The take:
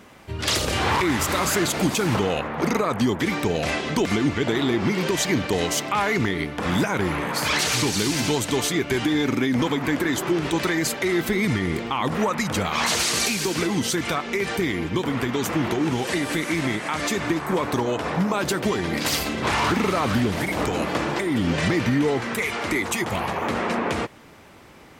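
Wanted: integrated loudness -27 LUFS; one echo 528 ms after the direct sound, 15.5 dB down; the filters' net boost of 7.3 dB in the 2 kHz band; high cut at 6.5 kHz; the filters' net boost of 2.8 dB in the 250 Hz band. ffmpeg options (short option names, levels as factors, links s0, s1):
-af "lowpass=6500,equalizer=f=250:t=o:g=3.5,equalizer=f=2000:t=o:g=8.5,aecho=1:1:528:0.168,volume=0.422"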